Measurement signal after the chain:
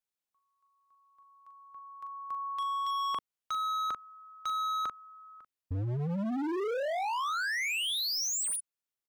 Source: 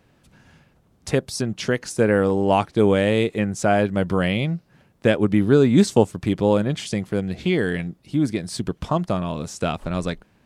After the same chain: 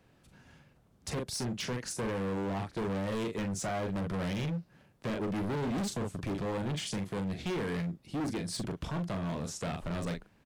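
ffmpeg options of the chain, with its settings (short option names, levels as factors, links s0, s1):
-filter_complex "[0:a]asplit=2[s0][s1];[s1]adelay=41,volume=0.398[s2];[s0][s2]amix=inputs=2:normalize=0,acrossover=split=290[s3][s4];[s4]alimiter=limit=0.158:level=0:latency=1:release=159[s5];[s3][s5]amix=inputs=2:normalize=0,volume=17.8,asoftclip=hard,volume=0.0562,volume=0.501"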